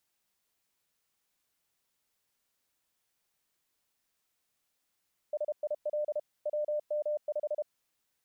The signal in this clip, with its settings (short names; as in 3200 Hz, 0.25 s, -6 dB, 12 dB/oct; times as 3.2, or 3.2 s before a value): Morse "SIL WM5" 32 wpm 599 Hz -28.5 dBFS